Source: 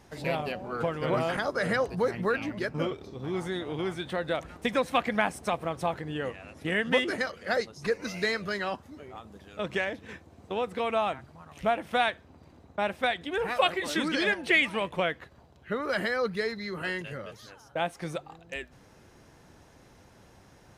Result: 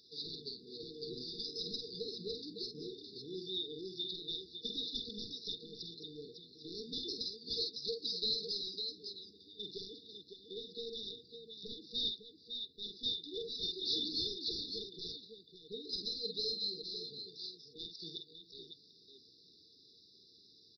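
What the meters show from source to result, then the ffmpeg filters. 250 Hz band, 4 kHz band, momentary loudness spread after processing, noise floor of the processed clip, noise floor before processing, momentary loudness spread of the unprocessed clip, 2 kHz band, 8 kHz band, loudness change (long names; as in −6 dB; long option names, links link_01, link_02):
−15.5 dB, +1.0 dB, 15 LU, −64 dBFS, −57 dBFS, 14 LU, below −40 dB, −11.0 dB, −10.0 dB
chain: -af "aderivative,aecho=1:1:48|554:0.422|0.355,aresample=11025,asoftclip=type=tanh:threshold=-39.5dB,aresample=44100,afftfilt=real='re*(1-between(b*sr/4096,480,3500))':imag='im*(1-between(b*sr/4096,480,3500))':win_size=4096:overlap=0.75,volume=13dB"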